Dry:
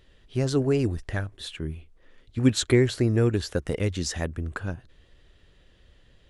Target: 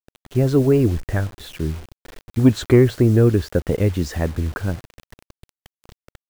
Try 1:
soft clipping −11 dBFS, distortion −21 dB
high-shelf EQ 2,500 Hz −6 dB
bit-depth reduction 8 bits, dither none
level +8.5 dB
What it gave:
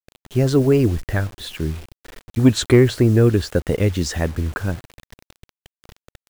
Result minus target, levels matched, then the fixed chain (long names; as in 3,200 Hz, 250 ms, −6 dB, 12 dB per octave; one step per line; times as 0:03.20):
4,000 Hz band +6.0 dB
soft clipping −11 dBFS, distortion −21 dB
high-shelf EQ 2,500 Hz −16 dB
bit-depth reduction 8 bits, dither none
level +8.5 dB